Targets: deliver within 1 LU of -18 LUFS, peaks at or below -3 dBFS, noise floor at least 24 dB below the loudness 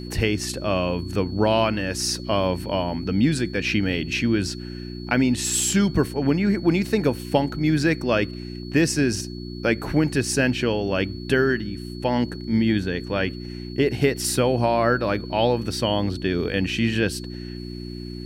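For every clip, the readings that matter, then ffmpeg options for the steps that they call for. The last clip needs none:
hum 60 Hz; highest harmonic 360 Hz; hum level -31 dBFS; steady tone 4.4 kHz; tone level -43 dBFS; loudness -23.0 LUFS; peak level -5.0 dBFS; loudness target -18.0 LUFS
-> -af "bandreject=f=60:t=h:w=4,bandreject=f=120:t=h:w=4,bandreject=f=180:t=h:w=4,bandreject=f=240:t=h:w=4,bandreject=f=300:t=h:w=4,bandreject=f=360:t=h:w=4"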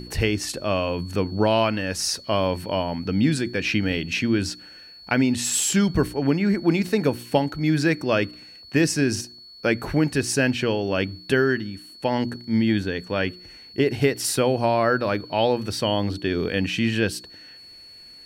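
hum not found; steady tone 4.4 kHz; tone level -43 dBFS
-> -af "bandreject=f=4400:w=30"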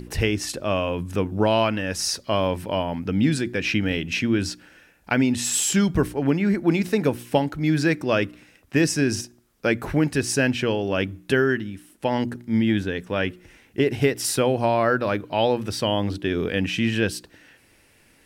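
steady tone not found; loudness -23.5 LUFS; peak level -5.5 dBFS; loudness target -18.0 LUFS
-> -af "volume=1.88,alimiter=limit=0.708:level=0:latency=1"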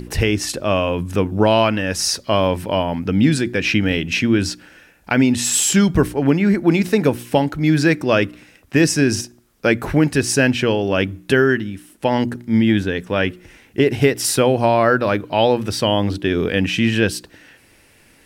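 loudness -18.0 LUFS; peak level -3.0 dBFS; noise floor -52 dBFS

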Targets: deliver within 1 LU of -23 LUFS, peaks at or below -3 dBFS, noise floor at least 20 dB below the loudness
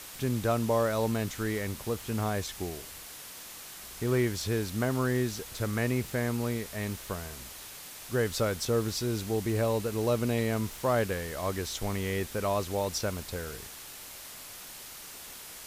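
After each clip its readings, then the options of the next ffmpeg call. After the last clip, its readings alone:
noise floor -45 dBFS; noise floor target -51 dBFS; loudness -31.0 LUFS; peak level -15.5 dBFS; loudness target -23.0 LUFS
-> -af "afftdn=nr=6:nf=-45"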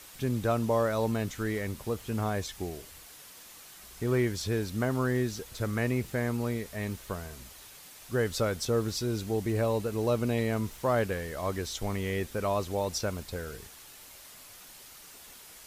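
noise floor -51 dBFS; loudness -31.0 LUFS; peak level -16.0 dBFS; loudness target -23.0 LUFS
-> -af "volume=2.51"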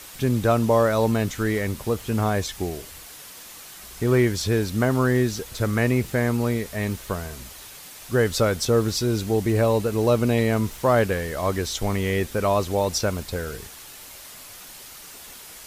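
loudness -23.0 LUFS; peak level -8.0 dBFS; noise floor -43 dBFS

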